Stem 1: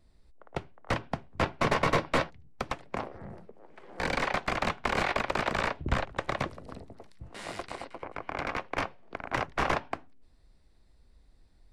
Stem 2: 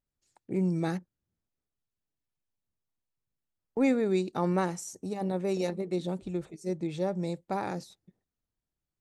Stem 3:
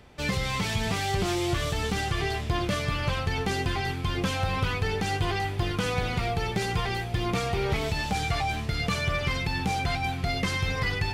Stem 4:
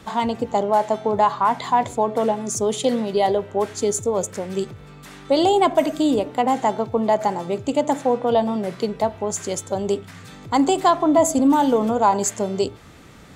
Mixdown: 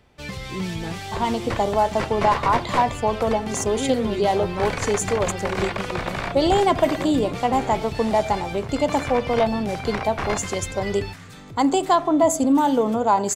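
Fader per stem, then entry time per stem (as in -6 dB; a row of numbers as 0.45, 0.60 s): 0.0, -2.5, -5.0, -1.5 dB; 0.60, 0.00, 0.00, 1.05 s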